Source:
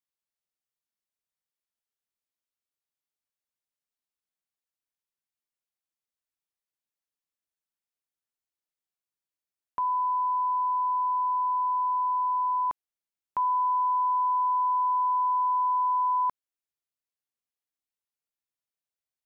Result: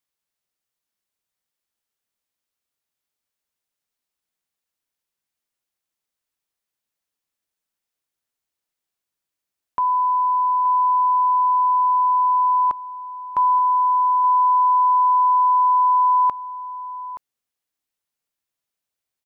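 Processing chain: delay 874 ms -14 dB; trim +7.5 dB

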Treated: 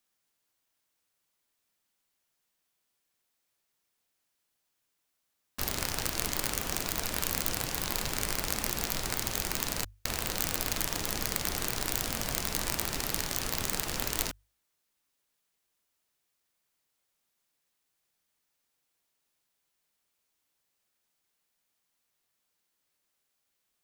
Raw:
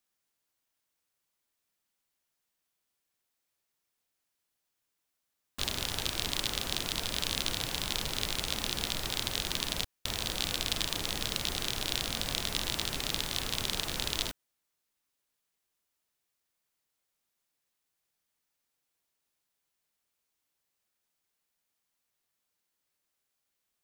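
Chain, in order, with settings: self-modulated delay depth 0.55 ms; hum notches 50/100 Hz; trim +3 dB

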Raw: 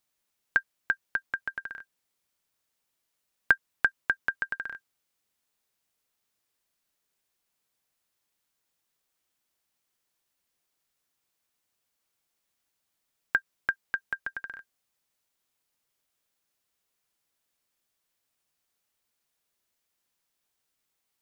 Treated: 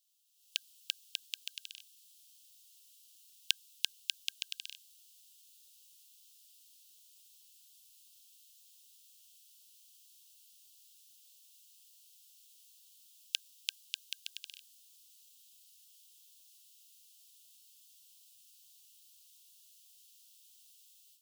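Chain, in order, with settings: steep high-pass 2.8 kHz 72 dB/octave; level rider gain up to 15.5 dB; trim +3.5 dB

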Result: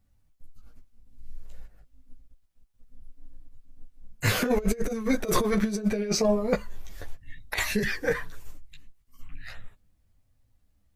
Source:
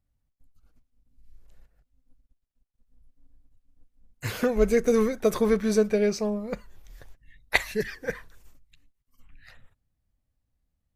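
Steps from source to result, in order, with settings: chorus voices 6, 0.25 Hz, delay 15 ms, depth 5 ms; compressor with a negative ratio -30 dBFS, ratio -0.5; trim +7 dB

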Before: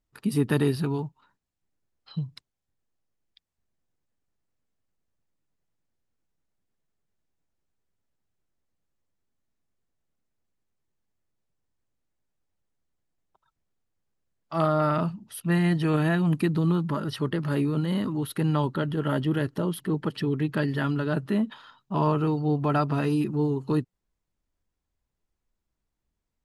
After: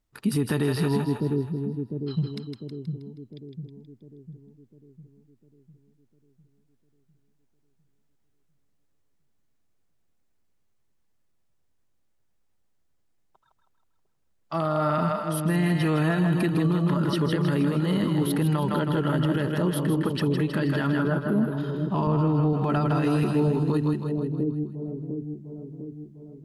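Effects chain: 20.87–21.58 s: time-frequency box 1.7–10 kHz -19 dB; 22.07–22.53 s: tilt EQ -2.5 dB/octave; on a send: two-band feedback delay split 480 Hz, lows 702 ms, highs 159 ms, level -5.5 dB; on the sum: peak limiter -19 dBFS, peak gain reduction 10 dB; trim +3.5 dB

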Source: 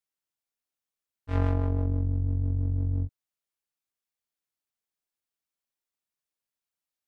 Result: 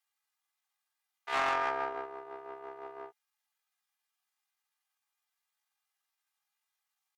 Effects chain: high-pass 550 Hz 24 dB/octave; treble shelf 2 kHz -8 dB; comb 3.6 ms, depth 81%; in parallel at -4.5 dB: saturation -36 dBFS, distortion -11 dB; on the sum: wide varispeed 1.45×; sine folder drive 3 dB, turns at -23.5 dBFS; tempo 0.68×; loudspeaker Doppler distortion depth 0.31 ms

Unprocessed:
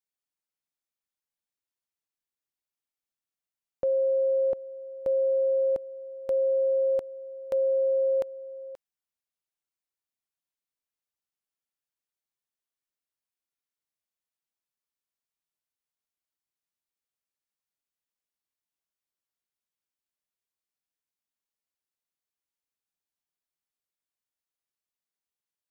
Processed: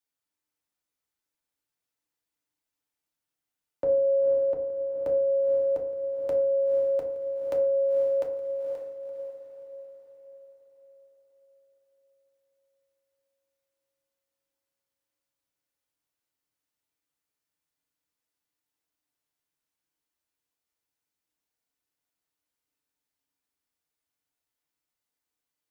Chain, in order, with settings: in parallel at -1 dB: compression, threshold -34 dBFS, peak gain reduction 10 dB; on the sum: frequency shift +14 Hz; echo that smears into a reverb 500 ms, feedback 47%, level -6.5 dB; FDN reverb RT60 0.59 s, low-frequency decay 1.3×, high-frequency decay 0.45×, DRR 0.5 dB; trim -4 dB

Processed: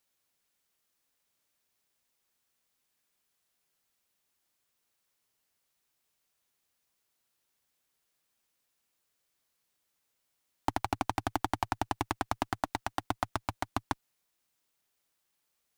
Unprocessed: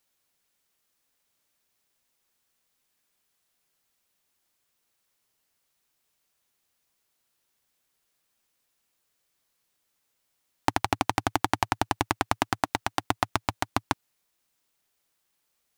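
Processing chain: single-diode clipper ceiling -9.5 dBFS; trim -3.5 dB

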